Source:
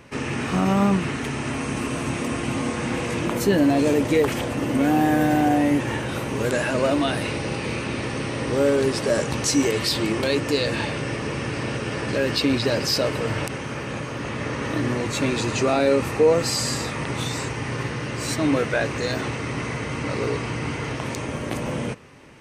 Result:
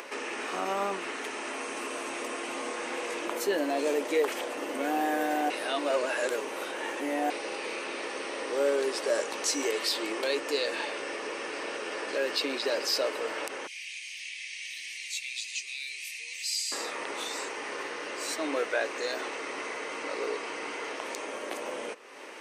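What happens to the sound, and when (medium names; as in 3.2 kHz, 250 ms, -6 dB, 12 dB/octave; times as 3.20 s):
5.50–7.30 s: reverse
13.67–16.72 s: elliptic high-pass 2.2 kHz
whole clip: high-pass 370 Hz 24 dB/octave; upward compressor, threshold -27 dBFS; trim -5.5 dB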